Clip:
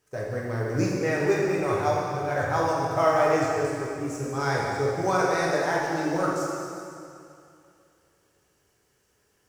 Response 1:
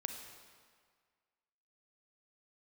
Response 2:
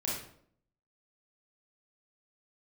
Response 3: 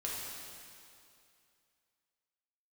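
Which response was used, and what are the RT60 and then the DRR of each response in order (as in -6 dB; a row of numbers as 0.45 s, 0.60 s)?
3; 1.8 s, 0.65 s, 2.5 s; 5.0 dB, -6.0 dB, -5.5 dB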